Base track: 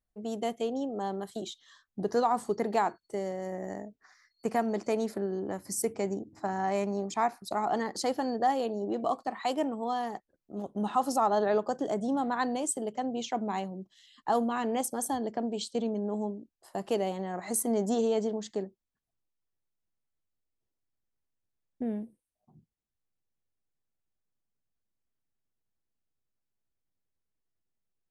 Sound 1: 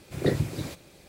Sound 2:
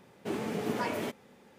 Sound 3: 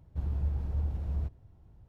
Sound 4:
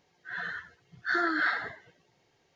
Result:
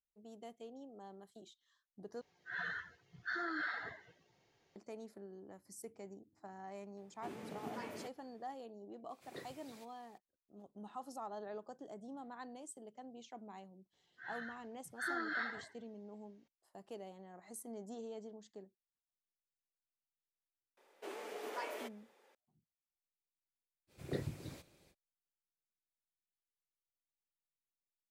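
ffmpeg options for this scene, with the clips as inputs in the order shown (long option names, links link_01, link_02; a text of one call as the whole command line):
ffmpeg -i bed.wav -i cue0.wav -i cue1.wav -i cue2.wav -i cue3.wav -filter_complex "[4:a]asplit=2[link_01][link_02];[2:a]asplit=2[link_03][link_04];[1:a]asplit=2[link_05][link_06];[0:a]volume=-19.5dB[link_07];[link_01]alimiter=level_in=1.5dB:limit=-24dB:level=0:latency=1:release=314,volume=-1.5dB[link_08];[link_05]highpass=frequency=910:poles=1[link_09];[link_04]highpass=frequency=400:width=0.5412,highpass=frequency=400:width=1.3066[link_10];[link_07]asplit=2[link_11][link_12];[link_11]atrim=end=2.214[link_13];[link_08]atrim=end=2.55,asetpts=PTS-STARTPTS,volume=-5dB[link_14];[link_12]atrim=start=4.756[link_15];[link_03]atrim=end=1.58,asetpts=PTS-STARTPTS,volume=-14dB,afade=type=in:duration=0.004:curve=hsin,afade=type=out:start_time=1.576:duration=0.004:curve=hsin,adelay=6970[link_16];[link_09]atrim=end=1.08,asetpts=PTS-STARTPTS,volume=-17.5dB,afade=type=in:duration=0.004:curve=hsin,afade=type=out:start_time=1.076:duration=0.004:curve=hsin,adelay=9100[link_17];[link_02]atrim=end=2.55,asetpts=PTS-STARTPTS,volume=-11.5dB,afade=type=in:duration=0.004:curve=hsin,afade=type=out:start_time=2.546:duration=0.004:curve=hsin,adelay=13930[link_18];[link_10]atrim=end=1.58,asetpts=PTS-STARTPTS,volume=-8.5dB,afade=type=in:duration=0.004:curve=hsin,afade=type=out:start_time=1.576:duration=0.004:curve=hsin,adelay=20770[link_19];[link_06]atrim=end=1.08,asetpts=PTS-STARTPTS,volume=-15dB,afade=type=in:duration=0.05,afade=type=out:start_time=1.03:duration=0.05,adelay=23870[link_20];[link_13][link_14]acrossfade=duration=0.004:curve1=hsin:curve2=hsin[link_21];[link_21][link_15]acrossfade=duration=0.004:curve1=hsin:curve2=hsin[link_22];[link_22][link_16][link_17][link_18][link_19][link_20]amix=inputs=6:normalize=0" out.wav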